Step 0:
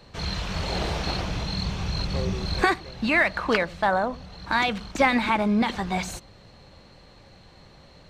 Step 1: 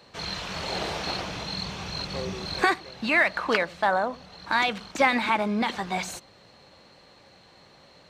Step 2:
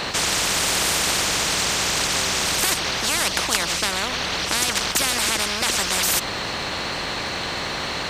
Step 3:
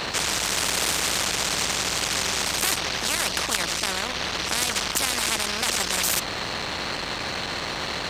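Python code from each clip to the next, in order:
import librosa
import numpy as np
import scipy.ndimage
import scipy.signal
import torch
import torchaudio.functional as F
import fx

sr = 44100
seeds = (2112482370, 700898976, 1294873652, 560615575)

y1 = fx.highpass(x, sr, hz=320.0, slope=6)
y2 = fx.spectral_comp(y1, sr, ratio=10.0)
y2 = y2 * 10.0 ** (4.5 / 20.0)
y3 = fx.transformer_sat(y2, sr, knee_hz=3900.0)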